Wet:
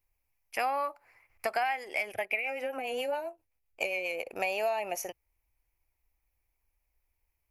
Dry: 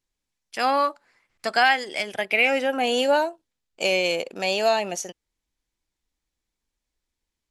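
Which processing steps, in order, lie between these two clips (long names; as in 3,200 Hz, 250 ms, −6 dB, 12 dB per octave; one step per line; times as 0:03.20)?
drawn EQ curve 110 Hz 0 dB, 160 Hz −19 dB, 790 Hz −2 dB, 1,600 Hz −10 dB, 2,400 Hz 0 dB, 3,500 Hz −20 dB, 5,400 Hz −12 dB, 8,000 Hz −15 dB, 12,000 Hz +4 dB
downward compressor 6 to 1, threshold −34 dBFS, peak gain reduction 15 dB
0:02.12–0:04.27: rotating-speaker cabinet horn 7.5 Hz
level +6 dB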